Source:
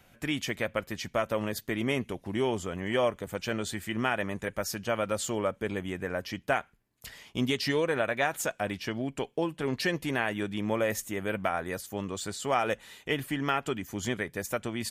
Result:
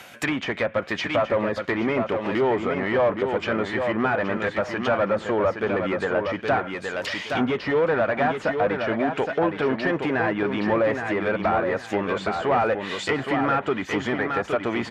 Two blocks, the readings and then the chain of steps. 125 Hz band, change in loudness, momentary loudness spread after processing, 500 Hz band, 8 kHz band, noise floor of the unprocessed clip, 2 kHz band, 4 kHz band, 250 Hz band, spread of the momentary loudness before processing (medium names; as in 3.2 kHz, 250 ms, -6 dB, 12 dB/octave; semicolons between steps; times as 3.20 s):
+4.0 dB, +7.5 dB, 4 LU, +8.5 dB, no reading, -63 dBFS, +7.0 dB, +2.0 dB, +7.0 dB, 6 LU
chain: overdrive pedal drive 24 dB, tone 6.5 kHz, clips at -12 dBFS; high-pass 48 Hz; reverse; upward compressor, threshold -29 dBFS; reverse; feedback delay 818 ms, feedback 24%, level -6 dB; low-pass that closes with the level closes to 1.4 kHz, closed at -19 dBFS